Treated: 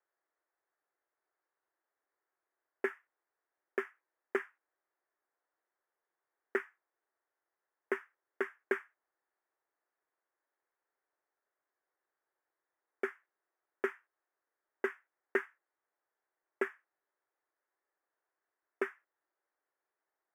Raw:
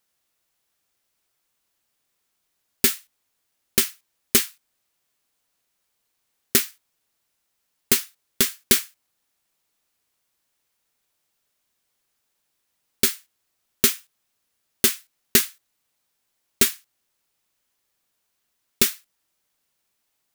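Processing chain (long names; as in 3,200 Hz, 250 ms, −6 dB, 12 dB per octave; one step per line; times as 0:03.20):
elliptic band-pass filter 340–1,800 Hz, stop band 40 dB
level −4.5 dB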